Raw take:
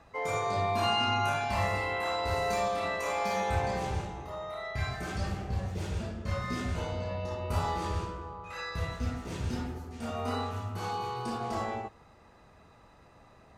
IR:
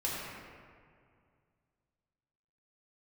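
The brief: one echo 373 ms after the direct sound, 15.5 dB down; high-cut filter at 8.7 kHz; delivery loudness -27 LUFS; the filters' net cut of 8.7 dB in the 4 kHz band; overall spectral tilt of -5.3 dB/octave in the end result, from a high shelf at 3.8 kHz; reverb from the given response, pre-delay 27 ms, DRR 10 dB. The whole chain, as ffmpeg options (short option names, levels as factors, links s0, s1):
-filter_complex "[0:a]lowpass=8700,highshelf=f=3800:g=-8.5,equalizer=f=4000:t=o:g=-8.5,aecho=1:1:373:0.168,asplit=2[s0][s1];[1:a]atrim=start_sample=2205,adelay=27[s2];[s1][s2]afir=irnorm=-1:irlink=0,volume=0.158[s3];[s0][s3]amix=inputs=2:normalize=0,volume=2.11"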